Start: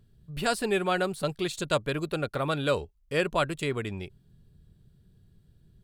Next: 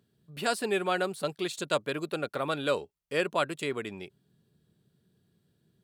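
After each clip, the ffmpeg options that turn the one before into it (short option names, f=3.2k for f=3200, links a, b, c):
-af "highpass=210,volume=-1.5dB"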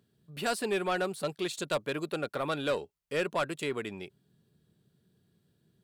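-af "asoftclip=type=tanh:threshold=-21.5dB"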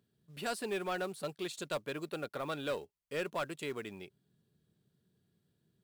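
-af "acrusher=bits=6:mode=log:mix=0:aa=0.000001,volume=-6dB"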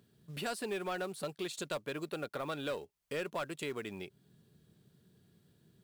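-af "acompressor=threshold=-53dB:ratio=2,volume=9.5dB"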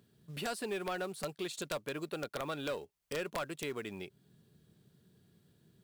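-af "aeval=exprs='(mod(26.6*val(0)+1,2)-1)/26.6':c=same"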